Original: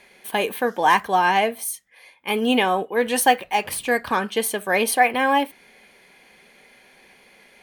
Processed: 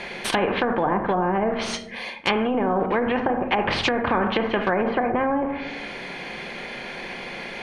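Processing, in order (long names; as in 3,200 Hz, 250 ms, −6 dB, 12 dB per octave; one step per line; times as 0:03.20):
low-shelf EQ 130 Hz −5 dB
in parallel at −4 dB: bit-depth reduction 6 bits, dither none
on the sum: treble cut that deepens with the level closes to 430 Hz, closed at −10 dBFS
low-shelf EQ 490 Hz +5 dB
convolution reverb RT60 0.60 s, pre-delay 6 ms, DRR 8.5 dB
treble cut that deepens with the level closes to 1,200 Hz, closed at −16 dBFS
low-pass filter 4,300 Hz 12 dB per octave
brickwall limiter −13 dBFS, peak gain reduction 9.5 dB
every bin compressed towards the loudest bin 2 to 1
level +6.5 dB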